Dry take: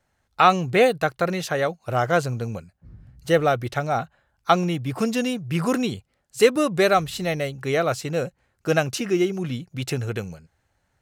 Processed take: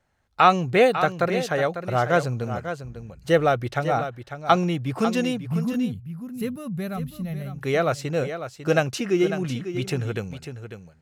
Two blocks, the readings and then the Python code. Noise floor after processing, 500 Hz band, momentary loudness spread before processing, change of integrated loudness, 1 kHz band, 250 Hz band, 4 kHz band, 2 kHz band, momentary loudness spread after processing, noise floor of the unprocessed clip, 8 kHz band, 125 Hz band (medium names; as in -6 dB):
-51 dBFS, -1.5 dB, 14 LU, -1.0 dB, -0.5 dB, 0.0 dB, -3.0 dB, -1.5 dB, 14 LU, -71 dBFS, -5.0 dB, +0.5 dB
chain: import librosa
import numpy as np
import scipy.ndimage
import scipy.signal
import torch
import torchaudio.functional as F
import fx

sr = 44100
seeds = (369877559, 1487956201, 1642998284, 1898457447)

y = fx.high_shelf(x, sr, hz=6000.0, db=-6.5)
y = fx.spec_box(y, sr, start_s=5.38, length_s=2.16, low_hz=260.0, high_hz=10000.0, gain_db=-17)
y = y + 10.0 ** (-10.0 / 20.0) * np.pad(y, (int(548 * sr / 1000.0), 0))[:len(y)]